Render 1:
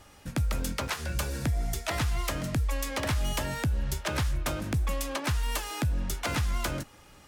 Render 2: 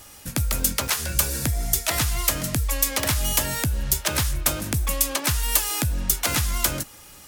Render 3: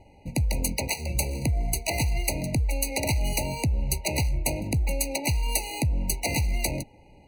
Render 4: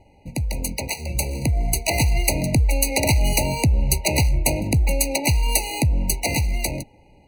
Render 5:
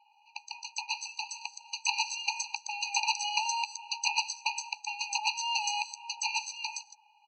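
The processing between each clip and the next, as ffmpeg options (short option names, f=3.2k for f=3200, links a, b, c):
-af "aemphasis=mode=production:type=75kf,volume=3dB"
-af "adynamicsmooth=sensitivity=5.5:basefreq=1.4k,aexciter=amount=2:drive=2.2:freq=9.9k,afftfilt=real='re*eq(mod(floor(b*sr/1024/970),2),0)':imag='im*eq(mod(floor(b*sr/1024/970),2),0)':win_size=1024:overlap=0.75"
-af "dynaudnorm=f=330:g=9:m=11.5dB"
-filter_complex "[0:a]aresample=16000,aresample=44100,acrossover=split=180|5200[a][b][c];[c]adelay=120[d];[a]adelay=380[e];[e][b][d]amix=inputs=3:normalize=0,afftfilt=real='re*eq(mod(floor(b*sr/1024/800),2),1)':imag='im*eq(mod(floor(b*sr/1024/800),2),1)':win_size=1024:overlap=0.75,volume=-1dB"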